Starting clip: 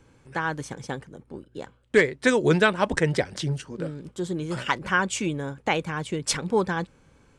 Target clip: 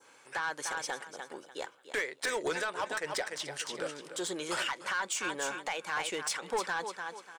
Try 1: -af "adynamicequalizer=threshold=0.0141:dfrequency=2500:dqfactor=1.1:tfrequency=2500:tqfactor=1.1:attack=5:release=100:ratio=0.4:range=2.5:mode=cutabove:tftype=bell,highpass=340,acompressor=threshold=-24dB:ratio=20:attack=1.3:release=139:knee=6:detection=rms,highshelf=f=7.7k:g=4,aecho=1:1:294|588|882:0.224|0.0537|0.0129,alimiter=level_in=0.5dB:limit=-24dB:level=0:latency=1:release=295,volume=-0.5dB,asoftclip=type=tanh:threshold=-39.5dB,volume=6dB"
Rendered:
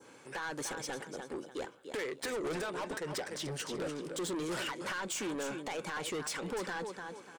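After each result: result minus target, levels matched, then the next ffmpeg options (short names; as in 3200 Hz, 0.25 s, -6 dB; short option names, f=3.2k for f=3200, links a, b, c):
compressor: peak gain reduction +14.5 dB; 250 Hz band +8.0 dB; soft clip: distortion +6 dB
-af "adynamicequalizer=threshold=0.0141:dfrequency=2500:dqfactor=1.1:tfrequency=2500:tqfactor=1.1:attack=5:release=100:ratio=0.4:range=2.5:mode=cutabove:tftype=bell,highpass=340,highshelf=f=7.7k:g=4,aecho=1:1:294|588|882:0.224|0.0537|0.0129,alimiter=level_in=0.5dB:limit=-24dB:level=0:latency=1:release=295,volume=-0.5dB,asoftclip=type=tanh:threshold=-39.5dB,volume=6dB"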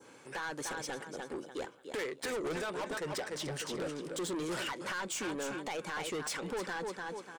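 250 Hz band +7.5 dB; soft clip: distortion +7 dB
-af "adynamicequalizer=threshold=0.0141:dfrequency=2500:dqfactor=1.1:tfrequency=2500:tqfactor=1.1:attack=5:release=100:ratio=0.4:range=2.5:mode=cutabove:tftype=bell,highpass=740,highshelf=f=7.7k:g=4,aecho=1:1:294|588|882:0.224|0.0537|0.0129,alimiter=level_in=0.5dB:limit=-24dB:level=0:latency=1:release=295,volume=-0.5dB,asoftclip=type=tanh:threshold=-39.5dB,volume=6dB"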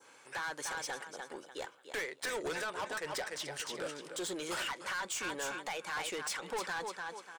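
soft clip: distortion +7 dB
-af "adynamicequalizer=threshold=0.0141:dfrequency=2500:dqfactor=1.1:tfrequency=2500:tqfactor=1.1:attack=5:release=100:ratio=0.4:range=2.5:mode=cutabove:tftype=bell,highpass=740,highshelf=f=7.7k:g=4,aecho=1:1:294|588|882:0.224|0.0537|0.0129,alimiter=level_in=0.5dB:limit=-24dB:level=0:latency=1:release=295,volume=-0.5dB,asoftclip=type=tanh:threshold=-31.5dB,volume=6dB"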